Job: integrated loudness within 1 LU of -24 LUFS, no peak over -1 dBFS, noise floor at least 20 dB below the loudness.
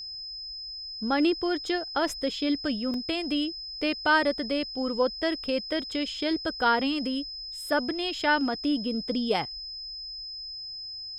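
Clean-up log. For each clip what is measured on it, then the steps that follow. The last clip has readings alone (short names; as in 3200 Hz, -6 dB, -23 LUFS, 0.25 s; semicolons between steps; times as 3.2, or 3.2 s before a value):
dropouts 1; longest dropout 1.9 ms; steady tone 5100 Hz; tone level -36 dBFS; loudness -28.5 LUFS; peak -10.5 dBFS; loudness target -24.0 LUFS
-> interpolate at 2.94, 1.9 ms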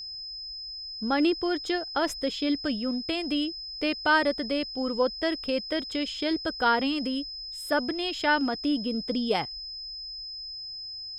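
dropouts 0; steady tone 5100 Hz; tone level -36 dBFS
-> notch 5100 Hz, Q 30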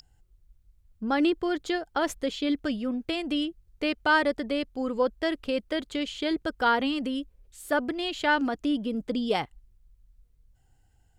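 steady tone none; loudness -28.0 LUFS; peak -10.5 dBFS; loudness target -24.0 LUFS
-> gain +4 dB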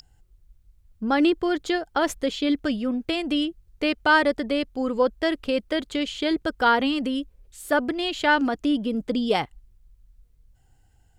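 loudness -24.0 LUFS; peak -6.5 dBFS; noise floor -60 dBFS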